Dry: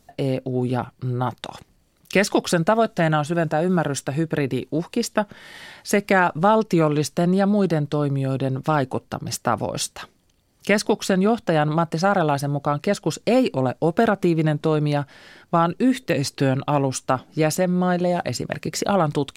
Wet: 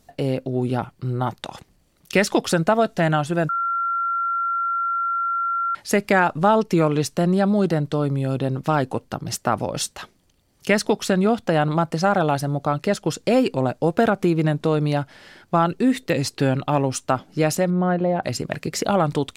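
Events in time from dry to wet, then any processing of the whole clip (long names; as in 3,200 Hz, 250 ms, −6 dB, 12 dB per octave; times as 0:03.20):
0:03.49–0:05.75: beep over 1,370 Hz −20 dBFS
0:17.70–0:18.23: low-pass filter 1,900 Hz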